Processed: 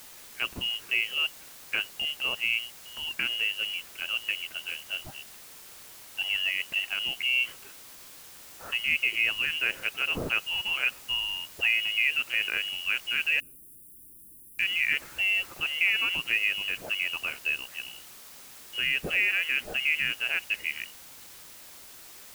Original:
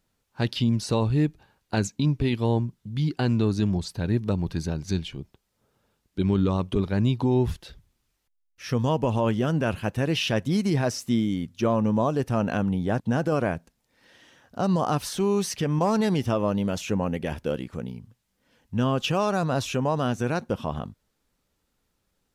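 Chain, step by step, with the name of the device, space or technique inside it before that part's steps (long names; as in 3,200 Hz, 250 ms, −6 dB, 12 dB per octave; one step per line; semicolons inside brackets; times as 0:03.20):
scrambled radio voice (band-pass filter 340–2,700 Hz; voice inversion scrambler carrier 3,100 Hz; white noise bed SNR 17 dB)
0:13.40–0:14.59: elliptic band-stop filter 330–9,900 Hz, stop band 40 dB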